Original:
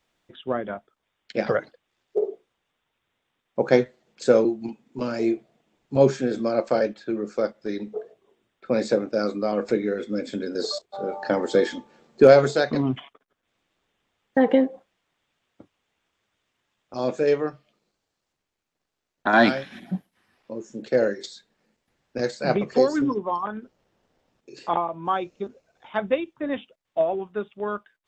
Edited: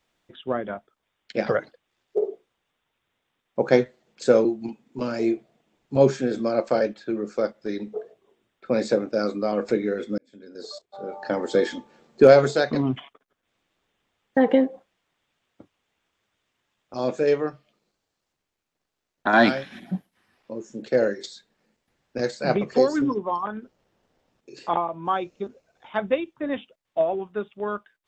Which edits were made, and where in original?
10.18–11.76 fade in

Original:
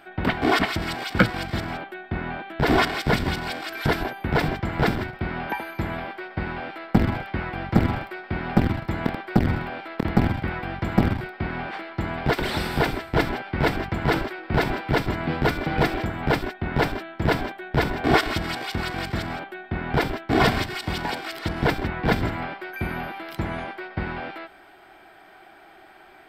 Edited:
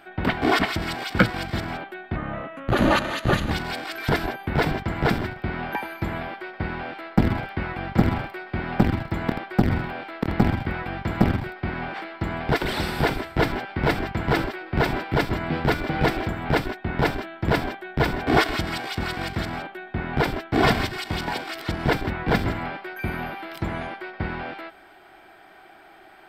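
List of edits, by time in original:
2.16–3.28 speed 83%

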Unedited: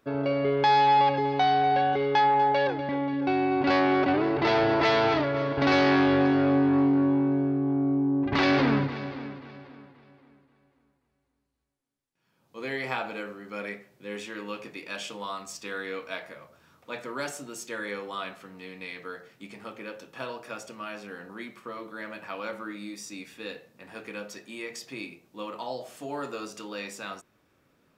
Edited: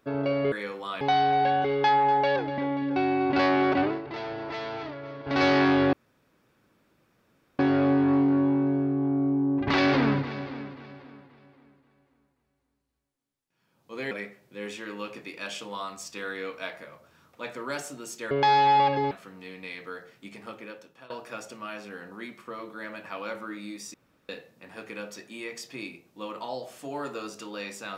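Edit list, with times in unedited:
0.52–1.32 swap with 17.8–18.29
4.13–5.74 dip -12 dB, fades 0.20 s
6.24 insert room tone 1.66 s
12.76–13.6 cut
19.69–20.28 fade out, to -18 dB
23.12–23.47 room tone

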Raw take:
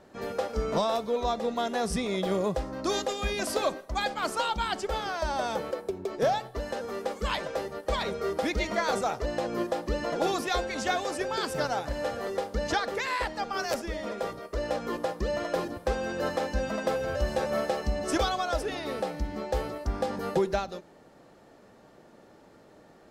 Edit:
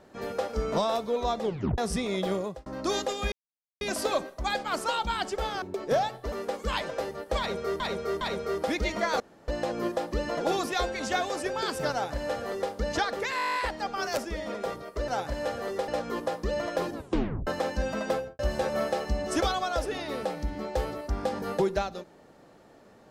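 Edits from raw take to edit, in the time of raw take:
1.43 tape stop 0.35 s
2.28–2.66 fade out
3.32 insert silence 0.49 s
5.13–5.93 cut
6.63–6.89 cut
7.96–8.37 loop, 3 plays
8.95–9.23 room tone
11.67–12.47 copy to 14.65
13.12 stutter 0.02 s, 10 plays
15.72 tape stop 0.52 s
16.88–17.16 studio fade out

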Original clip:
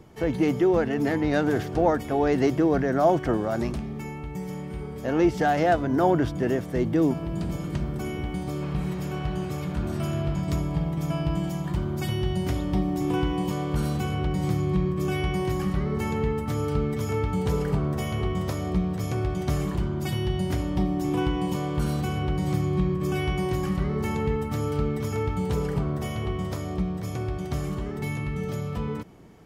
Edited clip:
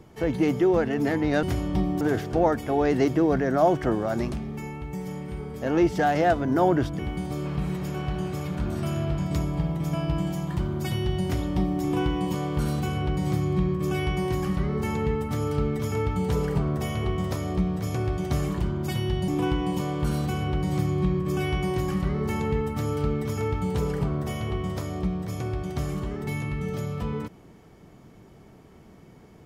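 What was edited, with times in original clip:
6.41–8.16 cut
20.45–21.03 move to 1.43

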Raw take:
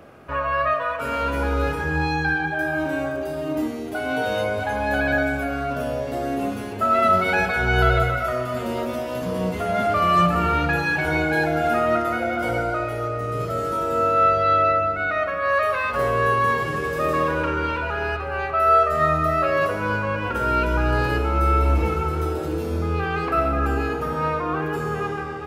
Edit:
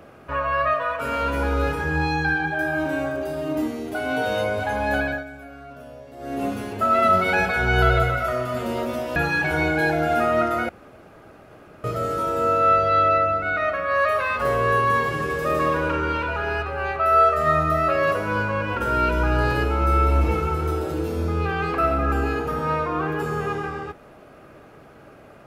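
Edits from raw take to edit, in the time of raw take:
4.96–6.45 dip -15 dB, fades 0.28 s
9.16–10.7 cut
12.23–13.38 room tone

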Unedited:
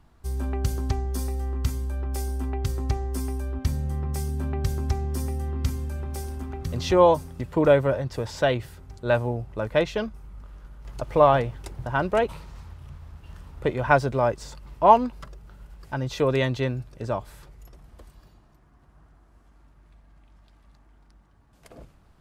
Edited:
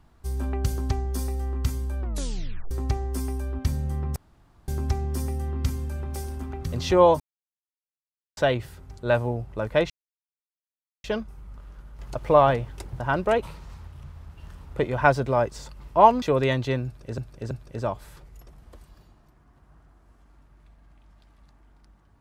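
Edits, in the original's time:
2 tape stop 0.71 s
4.16–4.68 room tone
7.2–8.37 mute
9.9 insert silence 1.14 s
15.08–16.14 cut
16.77–17.1 loop, 3 plays

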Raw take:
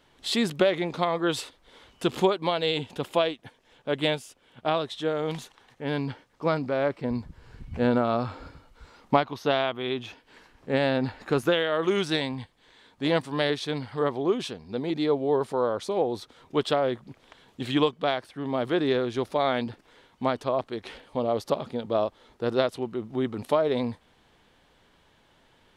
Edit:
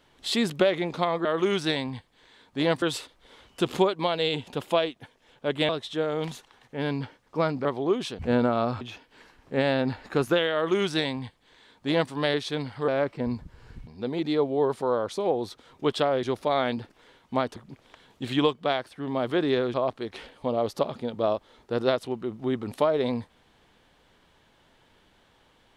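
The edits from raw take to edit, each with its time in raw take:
4.12–4.76 cut
6.72–7.71 swap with 14.04–14.58
8.33–9.97 cut
11.7–13.27 copy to 1.25
19.12–20.45 move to 16.94

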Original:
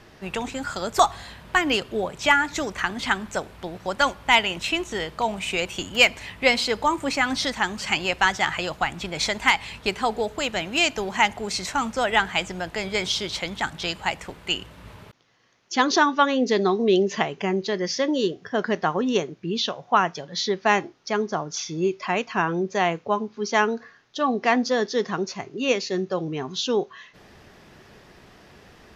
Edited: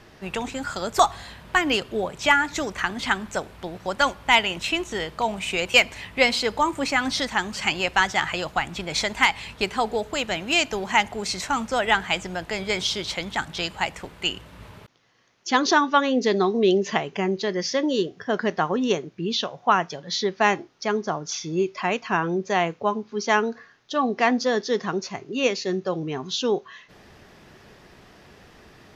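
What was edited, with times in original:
5.74–5.99 cut

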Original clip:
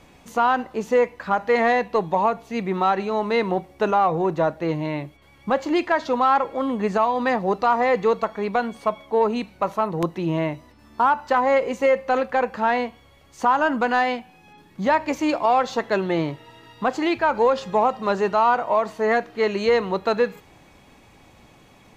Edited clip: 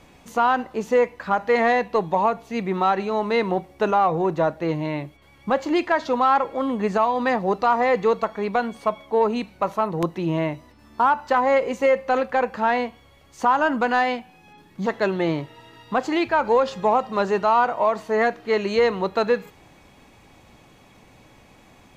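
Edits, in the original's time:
14.86–15.76 cut

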